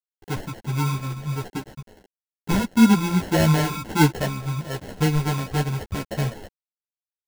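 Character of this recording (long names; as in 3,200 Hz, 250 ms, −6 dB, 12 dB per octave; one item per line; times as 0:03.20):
a quantiser's noise floor 6 bits, dither none
phaser sweep stages 4, 1.5 Hz, lowest notch 570–4,100 Hz
aliases and images of a low sample rate 1,200 Hz, jitter 0%
a shimmering, thickened sound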